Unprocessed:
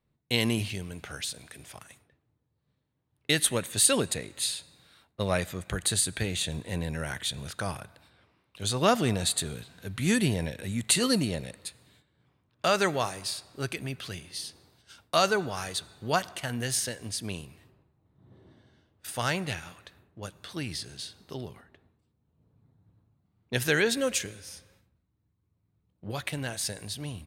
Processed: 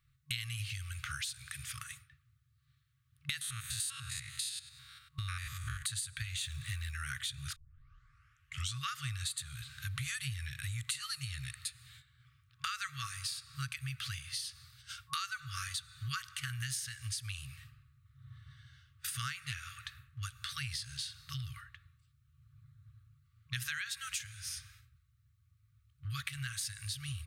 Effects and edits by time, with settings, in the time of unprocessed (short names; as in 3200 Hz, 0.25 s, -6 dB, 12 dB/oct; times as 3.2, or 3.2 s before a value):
3.41–5.83 stepped spectrum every 0.1 s
6.42–6.91 G.711 law mismatch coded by mu
7.56 tape start 1.24 s
whole clip: FFT band-reject 140–1100 Hz; compressor 6:1, threshold -43 dBFS; gain +6 dB